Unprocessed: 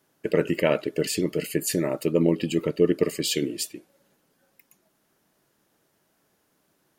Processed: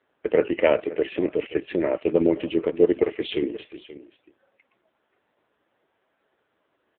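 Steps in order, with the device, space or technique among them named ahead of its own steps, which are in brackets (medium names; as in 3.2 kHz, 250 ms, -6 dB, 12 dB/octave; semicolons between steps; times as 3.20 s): 0.54–1.17 s: dynamic bell 6.3 kHz, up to -5 dB, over -41 dBFS, Q 1.4; satellite phone (band-pass 340–3200 Hz; delay 531 ms -16.5 dB; trim +5 dB; AMR-NB 5.9 kbps 8 kHz)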